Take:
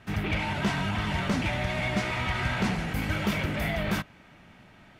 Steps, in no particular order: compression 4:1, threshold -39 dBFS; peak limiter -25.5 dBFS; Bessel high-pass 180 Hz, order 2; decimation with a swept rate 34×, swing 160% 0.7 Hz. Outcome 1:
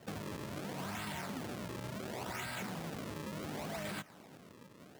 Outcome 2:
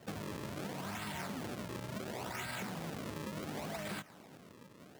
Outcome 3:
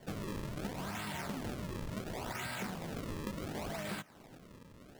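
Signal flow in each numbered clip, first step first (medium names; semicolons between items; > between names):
decimation with a swept rate > Bessel high-pass > peak limiter > compression; decimation with a swept rate > peak limiter > Bessel high-pass > compression; Bessel high-pass > decimation with a swept rate > compression > peak limiter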